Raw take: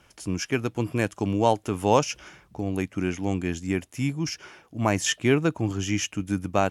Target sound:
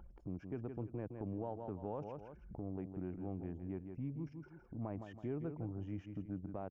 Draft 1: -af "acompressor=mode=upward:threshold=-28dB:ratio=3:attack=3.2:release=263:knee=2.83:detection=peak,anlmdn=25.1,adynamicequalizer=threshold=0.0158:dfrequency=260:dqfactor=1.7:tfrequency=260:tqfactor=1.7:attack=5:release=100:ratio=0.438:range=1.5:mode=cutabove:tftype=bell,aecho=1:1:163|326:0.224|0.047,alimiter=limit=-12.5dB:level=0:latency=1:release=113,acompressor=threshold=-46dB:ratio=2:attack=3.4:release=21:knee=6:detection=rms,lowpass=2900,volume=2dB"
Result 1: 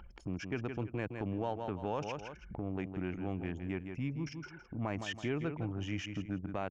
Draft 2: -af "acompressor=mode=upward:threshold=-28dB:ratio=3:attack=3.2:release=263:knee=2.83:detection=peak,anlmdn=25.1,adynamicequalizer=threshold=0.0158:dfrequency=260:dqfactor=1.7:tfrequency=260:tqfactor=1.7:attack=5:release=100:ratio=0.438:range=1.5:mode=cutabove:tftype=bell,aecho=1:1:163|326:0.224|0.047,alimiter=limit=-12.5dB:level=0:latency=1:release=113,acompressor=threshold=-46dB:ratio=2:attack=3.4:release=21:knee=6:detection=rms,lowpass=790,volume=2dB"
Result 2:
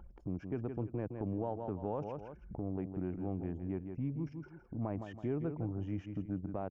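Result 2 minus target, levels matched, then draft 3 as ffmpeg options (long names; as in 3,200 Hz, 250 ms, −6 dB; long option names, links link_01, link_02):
downward compressor: peak gain reduction −5 dB
-af "acompressor=mode=upward:threshold=-28dB:ratio=3:attack=3.2:release=263:knee=2.83:detection=peak,anlmdn=25.1,adynamicequalizer=threshold=0.0158:dfrequency=260:dqfactor=1.7:tfrequency=260:tqfactor=1.7:attack=5:release=100:ratio=0.438:range=1.5:mode=cutabove:tftype=bell,aecho=1:1:163|326:0.224|0.047,alimiter=limit=-12.5dB:level=0:latency=1:release=113,acompressor=threshold=-56dB:ratio=2:attack=3.4:release=21:knee=6:detection=rms,lowpass=790,volume=2dB"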